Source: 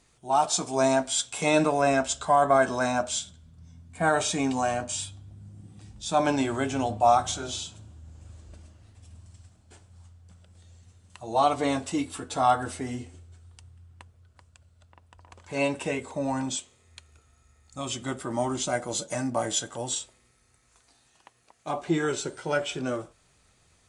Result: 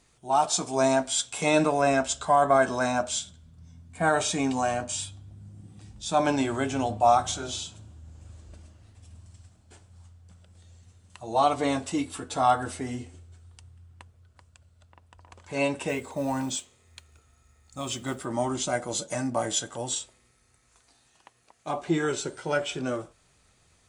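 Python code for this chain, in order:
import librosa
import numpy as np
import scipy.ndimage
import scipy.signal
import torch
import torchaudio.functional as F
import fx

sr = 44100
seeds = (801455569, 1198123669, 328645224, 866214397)

y = fx.mod_noise(x, sr, seeds[0], snr_db=27, at=(15.88, 18.25))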